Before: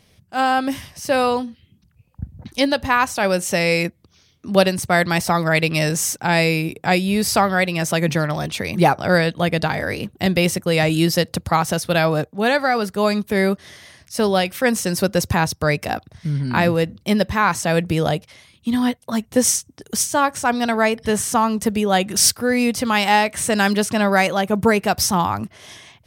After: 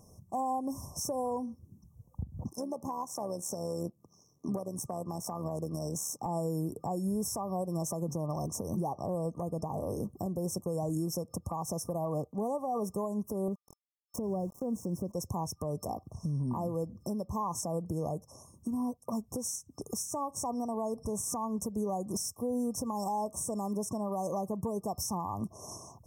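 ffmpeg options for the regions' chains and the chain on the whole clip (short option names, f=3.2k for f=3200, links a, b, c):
-filter_complex "[0:a]asettb=1/sr,asplit=3[a][b][c];[a]atrim=end=2.494[d];[b]atrim=start=2.49:end=6.26,asetpts=PTS-STARTPTS,afade=t=in:d=0.004:c=qsin,afade=t=out:st=3.766:d=0.004:c=qsin,aeval=exprs='if(lt(val(0),0),0.708*val(0),val(0))':c=same,highpass=f=120:w=0.5412,highpass=f=120:w=1.3066,tremolo=f=74:d=0.519[e];[c]atrim=start=6.256[f];[d][e]acrossfade=d=0.004:c1=hsin:c2=qsin[g];[g][f]acrossfade=d=0.004:c1=qsin:c2=hsin,asettb=1/sr,asplit=3[h][i][j];[h]atrim=end=13.484[k];[i]atrim=start=13.48:end=15.12,asetpts=PTS-STARTPTS,afade=t=in:d=0.004:c=qsin,afade=t=out:st=1.636:d=0.004:c=qsin,tiltshelf=f=800:g=9.5,aeval=exprs='val(0)*gte(abs(val(0)),0.0224)':c=same[l];[j]atrim=start=15.116[m];[k][l]acrossfade=d=0.004:c1=hsin:c2=qsin[n];[n][m]acrossfade=d=0.004:c1=qsin:c2=hsin,afftfilt=real='re*(1-between(b*sr/4096,1200,5300))':imag='im*(1-between(b*sr/4096,1200,5300))':win_size=4096:overlap=0.75,acompressor=threshold=-29dB:ratio=6,alimiter=level_in=1.5dB:limit=-24dB:level=0:latency=1:release=163,volume=-1.5dB"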